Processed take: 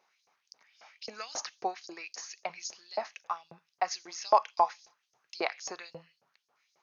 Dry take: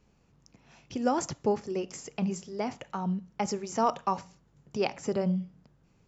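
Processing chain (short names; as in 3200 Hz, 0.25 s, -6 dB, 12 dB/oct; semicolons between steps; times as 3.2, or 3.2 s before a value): varispeed -11%; LFO high-pass saw up 3.7 Hz 600–6100 Hz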